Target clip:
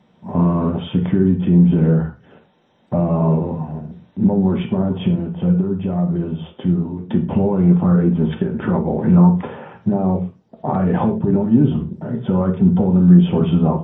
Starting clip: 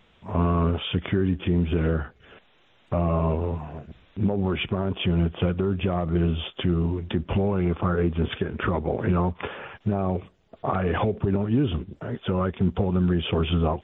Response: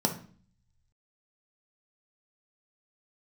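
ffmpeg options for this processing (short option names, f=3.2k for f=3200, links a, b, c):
-filter_complex "[0:a]asettb=1/sr,asplit=3[a][b][c];[a]atrim=end=5.084[d];[b]atrim=start=5.08:end=7.1,asetpts=PTS-STARTPTS,afade=t=in:d=0.004:c=qsin,afade=t=out:st=2.016:d=0.004:c=qsin,flanger=delay=9.5:depth=2.6:regen=83:speed=1.7:shape=triangular[e];[c]atrim=start=7.096[f];[d][e]acrossfade=d=0.004:c1=hsin:c2=qsin[g];[g][f]acrossfade=d=0.004:c1=qsin:c2=hsin[h];[1:a]atrim=start_sample=2205,atrim=end_sample=6174[i];[h][i]afir=irnorm=-1:irlink=0,volume=-8dB"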